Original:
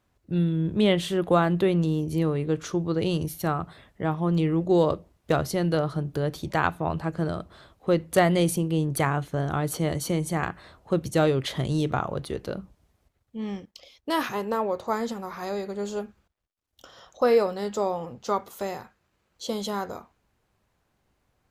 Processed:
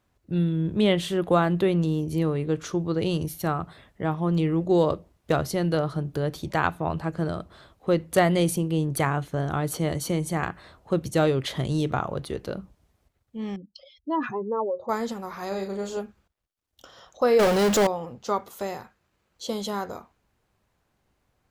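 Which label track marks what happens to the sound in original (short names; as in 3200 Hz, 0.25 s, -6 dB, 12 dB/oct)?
13.560000	14.890000	spectral contrast raised exponent 2.4
15.480000	15.970000	doubler 36 ms -5 dB
17.390000	17.870000	power-law curve exponent 0.35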